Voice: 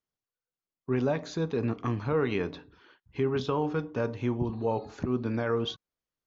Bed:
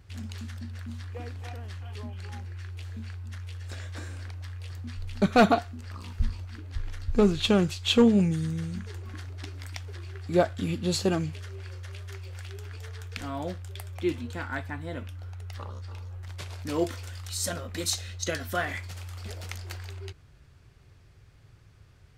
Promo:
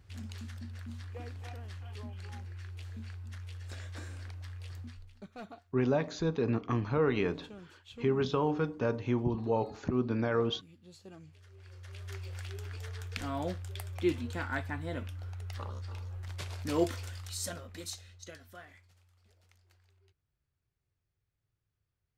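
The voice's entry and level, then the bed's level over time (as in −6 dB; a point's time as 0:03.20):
4.85 s, −1.0 dB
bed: 0:04.82 −5 dB
0:05.28 −27.5 dB
0:11.01 −27.5 dB
0:12.13 −1.5 dB
0:17.01 −1.5 dB
0:19.14 −28.5 dB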